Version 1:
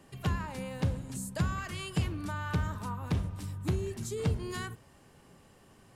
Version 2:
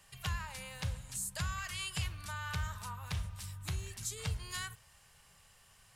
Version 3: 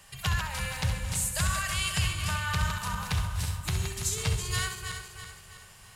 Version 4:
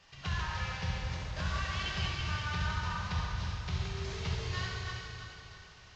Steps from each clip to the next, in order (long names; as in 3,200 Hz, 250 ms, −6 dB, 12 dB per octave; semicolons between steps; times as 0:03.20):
guitar amp tone stack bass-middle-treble 10-0-10; level +4.5 dB
feedback delay that plays each chunk backwards 164 ms, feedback 66%, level −6 dB; flutter between parallel walls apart 11.4 metres, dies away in 0.46 s; level +8 dB
variable-slope delta modulation 32 kbit/s; dense smooth reverb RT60 2.3 s, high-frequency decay 0.8×, DRR −1.5 dB; level −8 dB